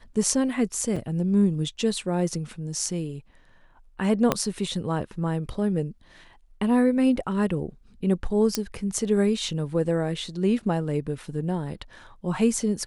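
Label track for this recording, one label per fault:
0.960000	0.960000	drop-out 4.7 ms
4.320000	4.320000	click −6 dBFS
8.550000	8.550000	click −7 dBFS

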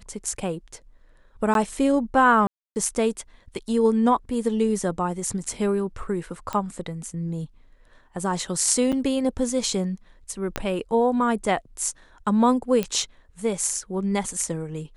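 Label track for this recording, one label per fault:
1.540000	1.550000	drop-out 12 ms
2.470000	2.760000	drop-out 289 ms
6.530000	6.530000	click −15 dBFS
8.920000	8.930000	drop-out 6.7 ms
10.560000	10.560000	click −10 dBFS
12.830000	12.830000	click −11 dBFS

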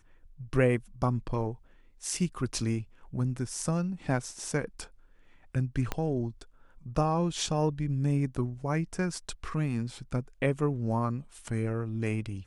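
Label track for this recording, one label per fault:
5.920000	5.920000	click −15 dBFS

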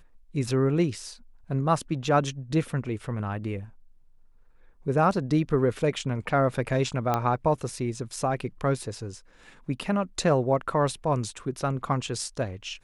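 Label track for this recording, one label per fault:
7.140000	7.140000	click −12 dBFS

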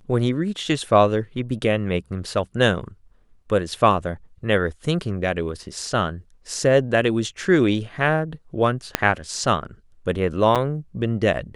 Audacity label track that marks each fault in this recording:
8.950000	8.950000	click −2 dBFS
10.550000	10.560000	drop-out 7 ms

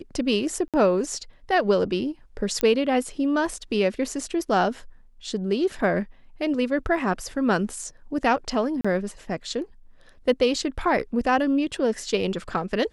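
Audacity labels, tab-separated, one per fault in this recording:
0.680000	0.740000	drop-out 57 ms
2.610000	2.610000	click −9 dBFS
8.810000	8.850000	drop-out 35 ms

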